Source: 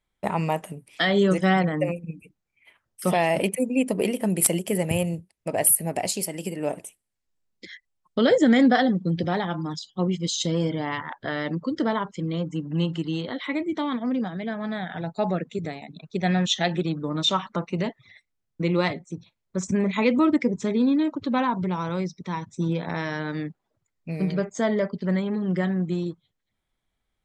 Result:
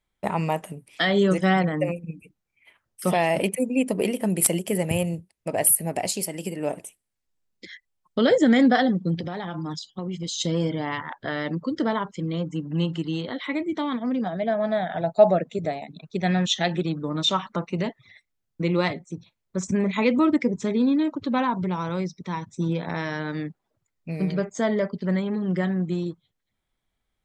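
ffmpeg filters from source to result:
-filter_complex "[0:a]asettb=1/sr,asplit=3[a][b][c];[a]atrim=end=9.144[d];[b]atrim=start=9.14:end=10.39,asetpts=PTS-STARTPTS,afade=t=in:d=0.004:c=qsin,afade=t=out:st=1.246:d=0.004:c=qsin,acompressor=threshold=-26dB:ratio=10:attack=3.2:release=140:knee=1:detection=peak[e];[c]atrim=start=10.386[f];[d][e]acrossfade=d=0.004:c1=hsin:c2=qsin[g];[g][f]acrossfade=d=0.004:c1=qsin:c2=hsin,asettb=1/sr,asplit=3[h][i][j];[h]atrim=end=14.264[k];[i]atrim=start=14.26:end=15.84,asetpts=PTS-STARTPTS,afade=t=in:d=0.004:c=qsin,afade=t=out:st=1.576:d=0.004:c=qsin,equalizer=f=640:t=o:w=0.5:g=13[l];[j]atrim=start=15.836[m];[k][l]acrossfade=d=0.004:c1=hsin:c2=qsin[n];[n][m]acrossfade=d=0.004:c1=qsin:c2=hsin"

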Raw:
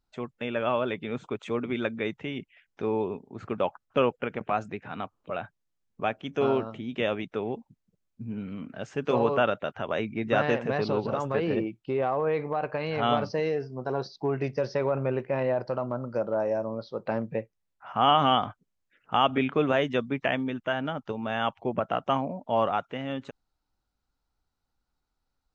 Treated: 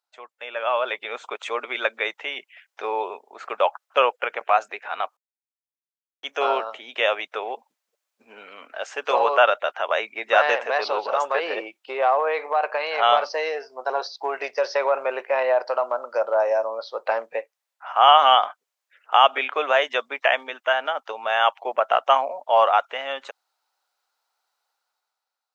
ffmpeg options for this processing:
-filter_complex "[0:a]asplit=3[a][b][c];[a]atrim=end=5.17,asetpts=PTS-STARTPTS,afade=t=out:st=5.166:d=0.004:c=hsin[d];[b]atrim=start=5.17:end=6.23,asetpts=PTS-STARTPTS,volume=0[e];[c]atrim=start=6.23,asetpts=PTS-STARTPTS,afade=t=in:d=0.004:c=hsin[f];[d][e][f]concat=n=3:v=0:a=1,highpass=f=600:w=0.5412,highpass=f=600:w=1.3066,dynaudnorm=f=140:g=11:m=10.5dB"

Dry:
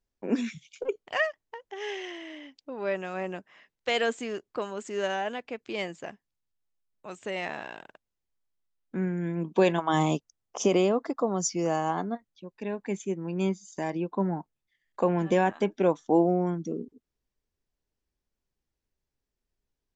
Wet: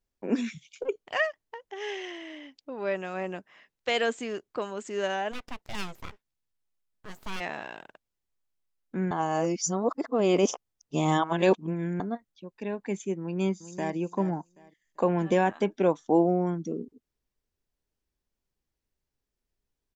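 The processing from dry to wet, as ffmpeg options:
-filter_complex "[0:a]asplit=3[a][b][c];[a]afade=t=out:st=5.31:d=0.02[d];[b]aeval=exprs='abs(val(0))':c=same,afade=t=in:st=5.31:d=0.02,afade=t=out:st=7.39:d=0.02[e];[c]afade=t=in:st=7.39:d=0.02[f];[d][e][f]amix=inputs=3:normalize=0,asplit=2[g][h];[h]afade=t=in:st=13.21:d=0.01,afade=t=out:st=13.95:d=0.01,aecho=0:1:390|780|1170:0.237137|0.0592843|0.0148211[i];[g][i]amix=inputs=2:normalize=0,asplit=3[j][k][l];[j]atrim=end=9.112[m];[k]atrim=start=9.108:end=12.002,asetpts=PTS-STARTPTS,areverse[n];[l]atrim=start=11.998[o];[m][n]acrossfade=d=0.004:c1=hsin:c2=hsin[p];[p][o]acrossfade=d=0.004:c1=hsin:c2=hsin"

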